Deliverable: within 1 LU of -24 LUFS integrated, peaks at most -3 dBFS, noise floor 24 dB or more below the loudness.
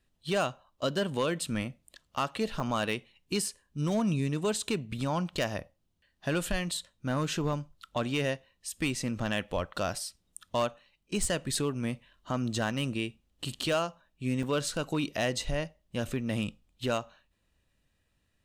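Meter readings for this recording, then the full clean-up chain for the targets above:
clipped samples 0.4%; clipping level -21.0 dBFS; dropouts 4; longest dropout 2.0 ms; loudness -32.5 LUFS; peak level -21.0 dBFS; loudness target -24.0 LUFS
-> clip repair -21 dBFS; interpolate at 2.60/7.53/9.96/14.43 s, 2 ms; trim +8.5 dB

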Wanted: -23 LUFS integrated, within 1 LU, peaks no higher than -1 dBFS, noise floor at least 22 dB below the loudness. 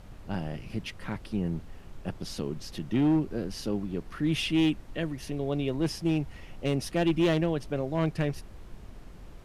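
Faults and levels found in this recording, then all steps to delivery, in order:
clipped samples 0.8%; clipping level -19.0 dBFS; noise floor -48 dBFS; noise floor target -52 dBFS; loudness -30.0 LUFS; peak level -19.0 dBFS; loudness target -23.0 LUFS
-> clip repair -19 dBFS; noise print and reduce 6 dB; trim +7 dB

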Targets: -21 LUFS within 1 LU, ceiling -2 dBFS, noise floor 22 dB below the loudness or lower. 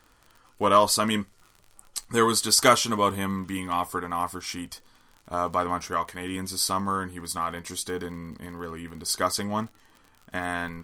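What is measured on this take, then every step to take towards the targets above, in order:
tick rate 44 per s; loudness -25.5 LUFS; peak level -4.0 dBFS; loudness target -21.0 LUFS
-> de-click; trim +4.5 dB; peak limiter -2 dBFS

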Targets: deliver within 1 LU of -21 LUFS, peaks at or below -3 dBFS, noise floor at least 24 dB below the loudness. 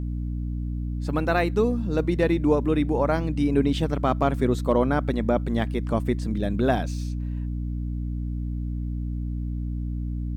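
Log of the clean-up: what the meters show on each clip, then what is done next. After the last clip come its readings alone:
hum 60 Hz; highest harmonic 300 Hz; hum level -26 dBFS; loudness -25.5 LUFS; peak level -8.5 dBFS; loudness target -21.0 LUFS
-> hum notches 60/120/180/240/300 Hz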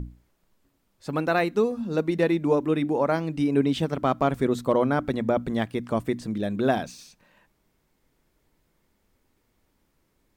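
hum not found; loudness -25.0 LUFS; peak level -10.0 dBFS; loudness target -21.0 LUFS
-> trim +4 dB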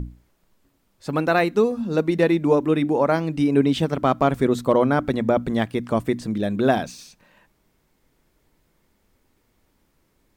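loudness -21.0 LUFS; peak level -6.0 dBFS; noise floor -67 dBFS

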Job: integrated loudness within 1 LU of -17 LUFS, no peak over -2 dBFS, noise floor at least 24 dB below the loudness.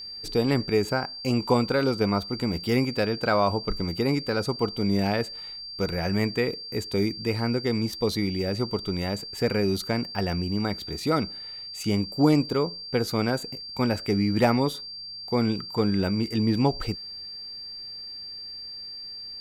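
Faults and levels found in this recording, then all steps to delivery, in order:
steady tone 4.7 kHz; tone level -36 dBFS; loudness -26.5 LUFS; peak level -8.5 dBFS; loudness target -17.0 LUFS
-> band-stop 4.7 kHz, Q 30; trim +9.5 dB; peak limiter -2 dBFS

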